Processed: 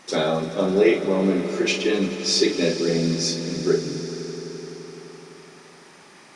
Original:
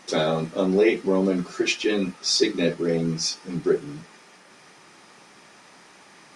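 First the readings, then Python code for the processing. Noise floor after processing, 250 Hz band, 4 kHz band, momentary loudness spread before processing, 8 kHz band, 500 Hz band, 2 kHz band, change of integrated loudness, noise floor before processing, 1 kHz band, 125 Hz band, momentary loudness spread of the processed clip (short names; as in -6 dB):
-48 dBFS, +1.5 dB, +1.5 dB, 6 LU, +2.0 dB, +2.0 dB, +1.5 dB, +1.5 dB, -52 dBFS, +1.5 dB, +2.0 dB, 17 LU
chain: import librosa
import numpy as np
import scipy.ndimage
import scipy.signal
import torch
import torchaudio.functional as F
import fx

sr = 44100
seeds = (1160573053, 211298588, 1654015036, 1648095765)

p1 = fx.doubler(x, sr, ms=41.0, db=-7.0)
y = p1 + fx.echo_swell(p1, sr, ms=85, loudest=5, wet_db=-17.0, dry=0)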